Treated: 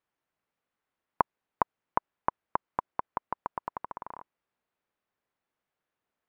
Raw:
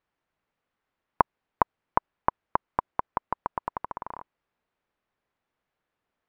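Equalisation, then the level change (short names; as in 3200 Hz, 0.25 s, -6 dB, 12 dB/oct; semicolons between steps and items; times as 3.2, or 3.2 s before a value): low shelf 69 Hz -8.5 dB; -4.0 dB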